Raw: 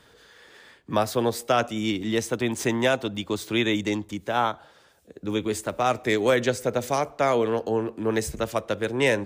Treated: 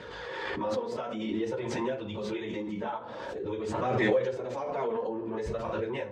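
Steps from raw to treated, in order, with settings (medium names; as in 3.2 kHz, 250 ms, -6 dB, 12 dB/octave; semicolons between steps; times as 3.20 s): high-pass 48 Hz 12 dB/octave; hum notches 60/120/180/240/300/360/420/480/540/600 Hz; compression 4:1, threshold -29 dBFS, peak gain reduction 11 dB; flange 0.34 Hz, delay 0.4 ms, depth 4.4 ms, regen -21%; plain phase-vocoder stretch 0.66×; distance through air 160 m; small resonant body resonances 490/920 Hz, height 10 dB, ringing for 20 ms; reverberation RT60 0.50 s, pre-delay 5 ms, DRR 5.5 dB; swell ahead of each attack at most 22 dB/s; trim -1.5 dB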